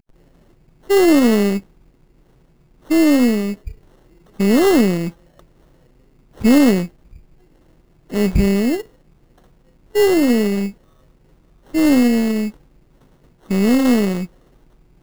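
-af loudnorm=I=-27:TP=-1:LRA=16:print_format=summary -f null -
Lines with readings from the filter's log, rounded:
Input Integrated:    -16.7 LUFS
Input True Peak:      -1.8 dBTP
Input LRA:             3.0 LU
Input Threshold:     -29.4 LUFS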